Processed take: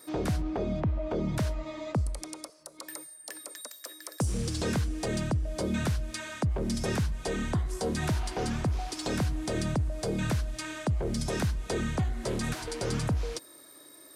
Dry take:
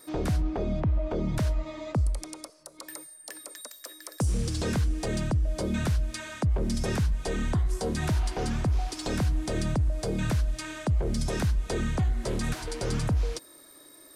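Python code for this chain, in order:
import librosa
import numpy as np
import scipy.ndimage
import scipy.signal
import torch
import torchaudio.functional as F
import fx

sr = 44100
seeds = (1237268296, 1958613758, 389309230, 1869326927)

y = fx.highpass(x, sr, hz=87.0, slope=6)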